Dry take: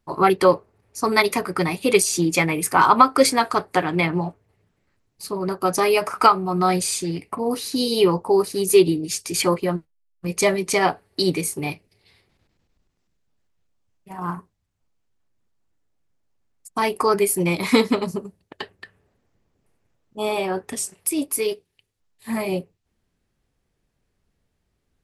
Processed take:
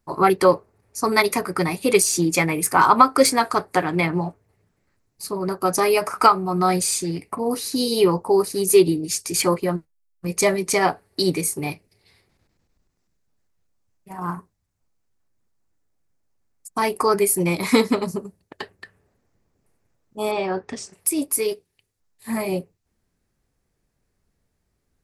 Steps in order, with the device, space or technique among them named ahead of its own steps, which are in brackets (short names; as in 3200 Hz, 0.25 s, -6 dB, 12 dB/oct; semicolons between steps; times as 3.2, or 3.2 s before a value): 20.31–20.93 LPF 5500 Hz 24 dB/oct; exciter from parts (in parallel at -5.5 dB: HPF 2900 Hz 24 dB/oct + soft clip -18.5 dBFS, distortion -13 dB)